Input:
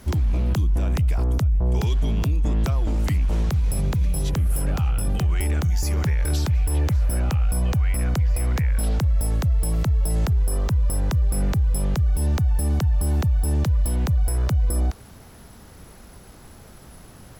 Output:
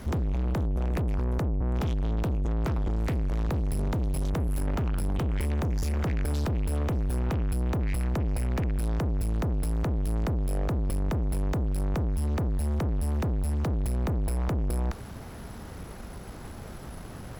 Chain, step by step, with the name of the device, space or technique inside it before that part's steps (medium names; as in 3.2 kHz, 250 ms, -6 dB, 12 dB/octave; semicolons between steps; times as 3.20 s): tube preamp driven hard (valve stage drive 32 dB, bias 0.4; treble shelf 3.4 kHz -8 dB); trim +6.5 dB